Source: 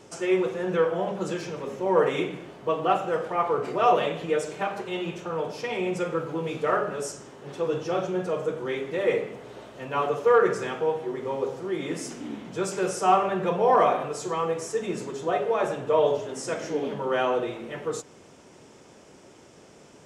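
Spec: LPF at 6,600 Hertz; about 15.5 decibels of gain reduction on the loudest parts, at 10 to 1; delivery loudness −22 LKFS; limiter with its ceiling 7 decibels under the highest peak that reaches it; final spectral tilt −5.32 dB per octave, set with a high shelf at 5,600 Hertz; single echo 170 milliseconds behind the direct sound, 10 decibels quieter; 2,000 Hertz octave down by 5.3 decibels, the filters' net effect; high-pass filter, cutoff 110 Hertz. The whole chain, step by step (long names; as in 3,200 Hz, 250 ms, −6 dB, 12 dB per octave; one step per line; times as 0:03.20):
high-pass filter 110 Hz
low-pass filter 6,600 Hz
parametric band 2,000 Hz −6.5 dB
high-shelf EQ 5,600 Hz −6 dB
downward compressor 10 to 1, threshold −32 dBFS
brickwall limiter −29.5 dBFS
single-tap delay 170 ms −10 dB
level +16.5 dB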